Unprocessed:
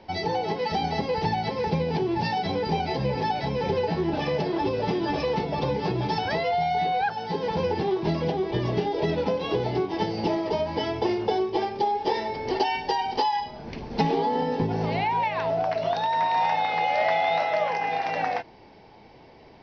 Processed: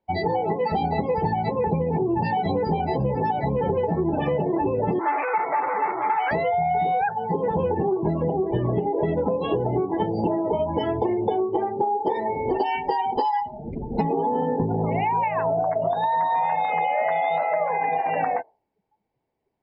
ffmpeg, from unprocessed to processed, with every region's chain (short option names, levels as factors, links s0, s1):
-filter_complex "[0:a]asettb=1/sr,asplit=3[s0][s1][s2];[s0]atrim=end=4.994[s3];[s1]atrim=start=4.99:end=6.31,asetpts=PTS-STARTPTS,afade=t=in:d=0.004:c=qsin,afade=t=out:st=1.316:d=0.004:c=qsin,acontrast=77,aeval=exprs='(tanh(20*val(0)+0.35)-tanh(0.35))/20':c=same,highpass=460,equalizer=f=510:t=q:w=4:g=-4,equalizer=f=870:t=q:w=4:g=8,equalizer=f=1300:t=q:w=4:g=7,equalizer=f=2100:t=q:w=4:g=9,lowpass=f=3500:w=0.5412,lowpass=f=3500:w=1.3066[s4];[s2]atrim=start=6.306[s5];[s3][s4]acrossfade=d=0.004:c1=hsin:c2=qsin[s6];[s6][s5]acrossfade=d=0.004:c1=qsin:c2=hsin,lowpass=f=2100:p=1,afftdn=nr=35:nf=-33,acompressor=threshold=0.0501:ratio=6,volume=2.11"